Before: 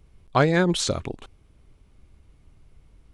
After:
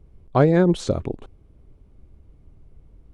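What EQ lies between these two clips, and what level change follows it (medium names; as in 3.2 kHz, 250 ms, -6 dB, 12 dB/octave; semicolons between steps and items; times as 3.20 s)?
tilt shelf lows +4.5 dB, about 1.2 kHz; bass shelf 240 Hz +5.5 dB; peaking EQ 460 Hz +5.5 dB 2 oct; -5.5 dB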